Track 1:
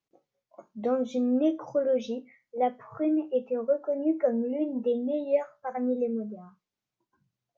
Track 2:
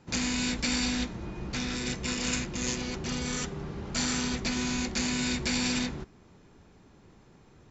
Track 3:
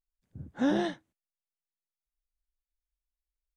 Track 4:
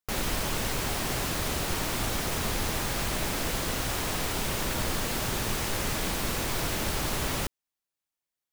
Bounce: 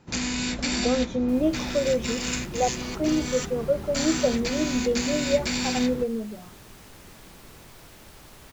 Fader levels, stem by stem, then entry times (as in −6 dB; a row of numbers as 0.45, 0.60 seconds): +1.5, +1.5, −9.5, −18.5 decibels; 0.00, 0.00, 0.00, 1.20 seconds